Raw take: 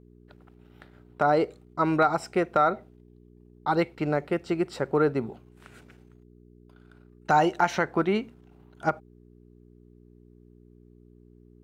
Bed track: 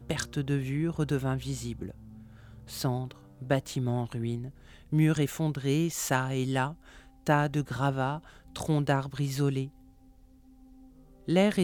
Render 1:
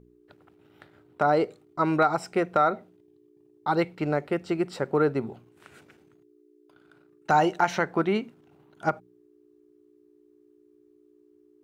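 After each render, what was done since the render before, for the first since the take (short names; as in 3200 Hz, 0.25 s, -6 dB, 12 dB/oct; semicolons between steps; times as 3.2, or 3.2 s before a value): de-hum 60 Hz, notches 4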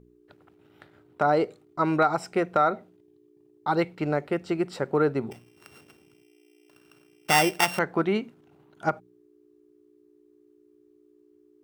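5.31–7.79 sample sorter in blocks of 16 samples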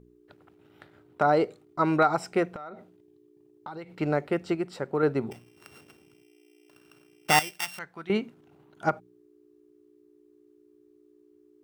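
2.48–3.96 compressor 20:1, threshold -35 dBFS; 4.55–5.03 gain -4 dB; 7.39–8.1 passive tone stack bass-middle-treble 5-5-5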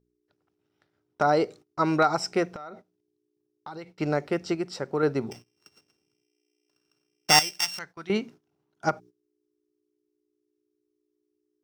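bell 5500 Hz +13 dB 0.59 oct; gate -45 dBFS, range -18 dB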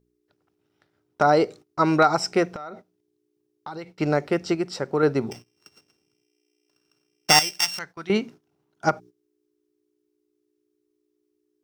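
gain +4 dB; limiter -3 dBFS, peak gain reduction 3 dB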